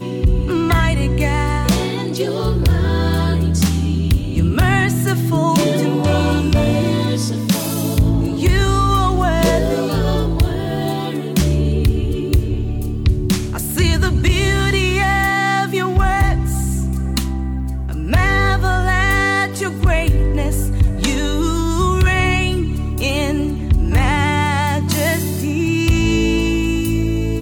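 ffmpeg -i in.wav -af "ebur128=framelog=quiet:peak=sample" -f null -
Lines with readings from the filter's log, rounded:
Integrated loudness:
  I:         -17.2 LUFS
  Threshold: -27.1 LUFS
Loudness range:
  LRA:         1.8 LU
  Threshold: -37.1 LUFS
  LRA low:   -18.0 LUFS
  LRA high:  -16.3 LUFS
Sample peak:
  Peak:       -5.8 dBFS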